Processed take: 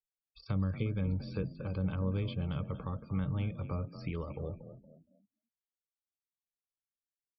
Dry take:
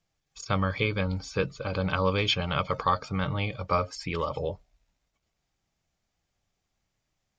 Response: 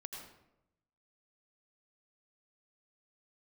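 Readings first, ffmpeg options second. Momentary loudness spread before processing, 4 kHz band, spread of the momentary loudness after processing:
6 LU, -20.5 dB, 7 LU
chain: -filter_complex "[0:a]aresample=11025,aresample=44100,lowshelf=f=310:g=4.5,acrossover=split=380[s0][s1];[s1]acompressor=threshold=0.0112:ratio=8[s2];[s0][s2]amix=inputs=2:normalize=0,asplit=2[s3][s4];[s4]asplit=4[s5][s6][s7][s8];[s5]adelay=233,afreqshift=35,volume=0.251[s9];[s6]adelay=466,afreqshift=70,volume=0.0977[s10];[s7]adelay=699,afreqshift=105,volume=0.038[s11];[s8]adelay=932,afreqshift=140,volume=0.015[s12];[s9][s10][s11][s12]amix=inputs=4:normalize=0[s13];[s3][s13]amix=inputs=2:normalize=0,afftdn=nr=34:nf=-50,volume=0.473"

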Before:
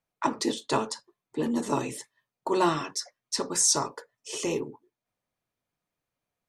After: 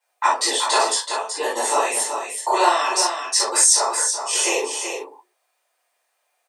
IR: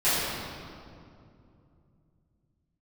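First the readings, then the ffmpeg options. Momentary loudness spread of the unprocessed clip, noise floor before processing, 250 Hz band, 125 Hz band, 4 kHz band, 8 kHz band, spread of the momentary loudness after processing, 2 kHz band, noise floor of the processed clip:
16 LU, under -85 dBFS, -5.0 dB, under -25 dB, +11.5 dB, +11.0 dB, 11 LU, +14.0 dB, -72 dBFS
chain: -filter_complex "[0:a]highpass=f=540:w=0.5412,highpass=f=540:w=1.3066,equalizer=f=8800:w=3.9:g=8.5,acompressor=threshold=0.0282:ratio=2.5,aecho=1:1:378:0.447[s0];[1:a]atrim=start_sample=2205,atrim=end_sample=3528[s1];[s0][s1]afir=irnorm=-1:irlink=0,volume=1.58"

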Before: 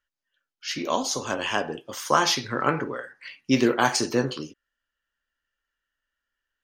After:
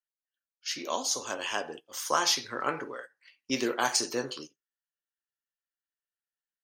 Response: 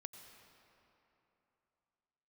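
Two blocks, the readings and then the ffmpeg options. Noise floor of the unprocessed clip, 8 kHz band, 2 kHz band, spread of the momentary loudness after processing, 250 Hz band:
-85 dBFS, -0.5 dB, -6.0 dB, 13 LU, -11.0 dB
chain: -filter_complex "[0:a]bass=f=250:g=-11,treble=f=4000:g=7,agate=range=0.224:threshold=0.0158:ratio=16:detection=peak,asplit=2[s0][s1];[1:a]atrim=start_sample=2205,atrim=end_sample=3969[s2];[s1][s2]afir=irnorm=-1:irlink=0,volume=0.398[s3];[s0][s3]amix=inputs=2:normalize=0,volume=0.398"

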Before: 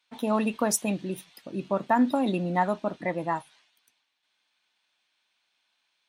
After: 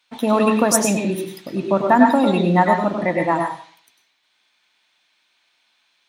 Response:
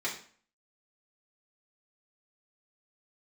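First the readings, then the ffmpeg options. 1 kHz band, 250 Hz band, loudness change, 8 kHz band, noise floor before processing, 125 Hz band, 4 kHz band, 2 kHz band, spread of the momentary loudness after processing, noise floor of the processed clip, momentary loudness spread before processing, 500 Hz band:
+10.0 dB, +9.5 dB, +9.5 dB, +9.0 dB, -76 dBFS, +10.0 dB, +10.0 dB, +11.0 dB, 13 LU, -66 dBFS, 12 LU, +10.5 dB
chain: -filter_complex "[0:a]asplit=2[s0][s1];[1:a]atrim=start_sample=2205,adelay=97[s2];[s1][s2]afir=irnorm=-1:irlink=0,volume=0.447[s3];[s0][s3]amix=inputs=2:normalize=0,volume=2.51"

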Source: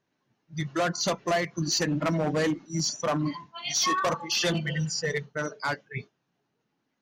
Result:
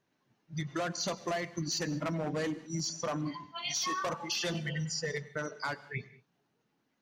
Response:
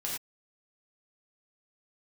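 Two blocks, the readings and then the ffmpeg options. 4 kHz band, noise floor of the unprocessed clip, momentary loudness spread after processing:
-6.5 dB, -78 dBFS, 7 LU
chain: -filter_complex "[0:a]acompressor=threshold=0.02:ratio=3,asplit=2[s0][s1];[1:a]atrim=start_sample=2205,adelay=96[s2];[s1][s2]afir=irnorm=-1:irlink=0,volume=0.0891[s3];[s0][s3]amix=inputs=2:normalize=0"

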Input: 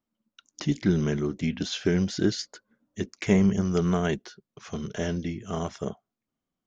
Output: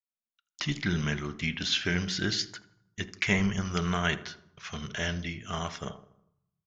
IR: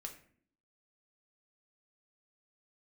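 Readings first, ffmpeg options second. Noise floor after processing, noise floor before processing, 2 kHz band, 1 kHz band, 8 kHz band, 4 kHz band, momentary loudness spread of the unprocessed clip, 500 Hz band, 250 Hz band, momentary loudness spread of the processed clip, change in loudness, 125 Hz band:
under -85 dBFS, under -85 dBFS, +6.5 dB, +1.0 dB, no reading, +5.5 dB, 14 LU, -8.5 dB, -7.0 dB, 15 LU, -3.0 dB, -4.5 dB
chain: -filter_complex "[0:a]agate=range=0.0447:threshold=0.00398:ratio=16:detection=peak,lowpass=2300,equalizer=f=360:t=o:w=2.4:g=-11.5,bandreject=f=62.04:t=h:w=4,bandreject=f=124.08:t=h:w=4,bandreject=f=186.12:t=h:w=4,bandreject=f=248.16:t=h:w=4,bandreject=f=310.2:t=h:w=4,bandreject=f=372.24:t=h:w=4,bandreject=f=434.28:t=h:w=4,bandreject=f=496.32:t=h:w=4,bandreject=f=558.36:t=h:w=4,bandreject=f=620.4:t=h:w=4,bandreject=f=682.44:t=h:w=4,bandreject=f=744.48:t=h:w=4,bandreject=f=806.52:t=h:w=4,bandreject=f=868.56:t=h:w=4,bandreject=f=930.6:t=h:w=4,bandreject=f=992.64:t=h:w=4,bandreject=f=1054.68:t=h:w=4,bandreject=f=1116.72:t=h:w=4,bandreject=f=1178.76:t=h:w=4,bandreject=f=1240.8:t=h:w=4,bandreject=f=1302.84:t=h:w=4,crystalizer=i=9:c=0,asplit=2[s0][s1];[s1]adelay=80,lowpass=f=1600:p=1,volume=0.168,asplit=2[s2][s3];[s3]adelay=80,lowpass=f=1600:p=1,volume=0.53,asplit=2[s4][s5];[s5]adelay=80,lowpass=f=1600:p=1,volume=0.53,asplit=2[s6][s7];[s7]adelay=80,lowpass=f=1600:p=1,volume=0.53,asplit=2[s8][s9];[s9]adelay=80,lowpass=f=1600:p=1,volume=0.53[s10];[s0][s2][s4][s6][s8][s10]amix=inputs=6:normalize=0,asplit=2[s11][s12];[1:a]atrim=start_sample=2205,asetrate=23373,aresample=44100[s13];[s12][s13]afir=irnorm=-1:irlink=0,volume=0.178[s14];[s11][s14]amix=inputs=2:normalize=0"

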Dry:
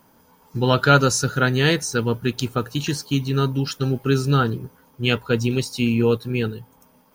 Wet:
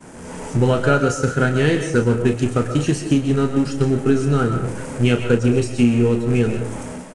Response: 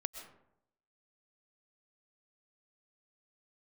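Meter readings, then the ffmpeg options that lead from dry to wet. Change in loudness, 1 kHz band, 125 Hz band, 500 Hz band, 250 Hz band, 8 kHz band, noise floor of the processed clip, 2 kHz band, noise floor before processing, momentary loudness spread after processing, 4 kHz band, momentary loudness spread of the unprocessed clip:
+2.5 dB, -1.5 dB, +2.5 dB, +3.5 dB, +5.0 dB, -3.0 dB, -35 dBFS, -1.0 dB, -57 dBFS, 8 LU, -6.0 dB, 9 LU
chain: -filter_complex "[0:a]aeval=exprs='val(0)+0.5*0.0668*sgn(val(0))':c=same,highshelf=f=3500:g=-11.5,acompressor=threshold=0.0501:ratio=4,agate=range=0.0224:threshold=0.0631:ratio=3:detection=peak,equalizer=f=125:t=o:w=1:g=-4,equalizer=f=1000:t=o:w=1:g=-8,equalizer=f=4000:t=o:w=1:g=-10,equalizer=f=8000:t=o:w=1:g=8,aresample=22050,aresample=44100[s0];[1:a]atrim=start_sample=2205,afade=t=out:st=0.31:d=0.01,atrim=end_sample=14112[s1];[s0][s1]afir=irnorm=-1:irlink=0,dynaudnorm=f=110:g=5:m=2.82,asplit=2[s2][s3];[s3]adelay=33,volume=0.376[s4];[s2][s4]amix=inputs=2:normalize=0,volume=2.11"

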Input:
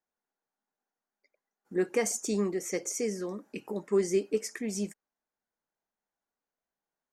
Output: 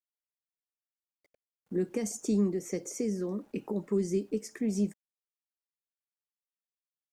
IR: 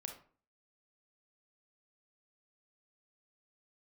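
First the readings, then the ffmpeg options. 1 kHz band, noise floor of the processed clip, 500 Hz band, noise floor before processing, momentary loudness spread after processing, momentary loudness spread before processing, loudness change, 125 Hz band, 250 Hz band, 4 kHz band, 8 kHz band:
-7.0 dB, under -85 dBFS, -3.5 dB, under -85 dBFS, 8 LU, 10 LU, -1.0 dB, +5.0 dB, +3.0 dB, -6.5 dB, -6.5 dB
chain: -filter_complex "[0:a]acrossover=split=260|3000[s0][s1][s2];[s1]acompressor=threshold=0.0112:ratio=10[s3];[s0][s3][s2]amix=inputs=3:normalize=0,acrusher=bits=10:mix=0:aa=0.000001,tiltshelf=f=1200:g=6.5"

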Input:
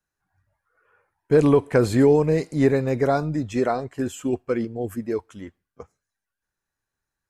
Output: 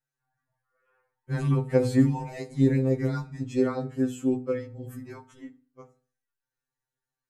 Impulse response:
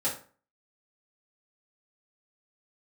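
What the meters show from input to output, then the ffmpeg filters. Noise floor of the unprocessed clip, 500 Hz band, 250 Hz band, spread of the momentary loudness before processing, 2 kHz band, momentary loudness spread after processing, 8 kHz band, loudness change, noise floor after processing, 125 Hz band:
under -85 dBFS, -9.0 dB, -3.5 dB, 12 LU, -8.0 dB, 17 LU, -7.0 dB, -4.5 dB, under -85 dBFS, -1.0 dB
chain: -filter_complex "[0:a]asplit=2[s0][s1];[1:a]atrim=start_sample=2205,lowshelf=f=260:g=9.5[s2];[s1][s2]afir=irnorm=-1:irlink=0,volume=0.168[s3];[s0][s3]amix=inputs=2:normalize=0,afftfilt=real='re*2.45*eq(mod(b,6),0)':imag='im*2.45*eq(mod(b,6),0)':win_size=2048:overlap=0.75,volume=0.501"

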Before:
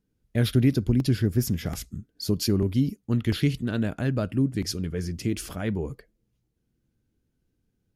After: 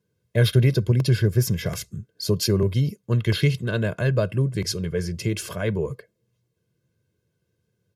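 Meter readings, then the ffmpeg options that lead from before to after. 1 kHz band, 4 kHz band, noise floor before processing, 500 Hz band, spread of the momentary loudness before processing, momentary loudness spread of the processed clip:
+3.0 dB, +4.5 dB, -76 dBFS, +6.0 dB, 10 LU, 9 LU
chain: -af "highpass=f=100:w=0.5412,highpass=f=100:w=1.3066,highshelf=f=8300:g=-4,aecho=1:1:1.9:0.8,volume=1.5"

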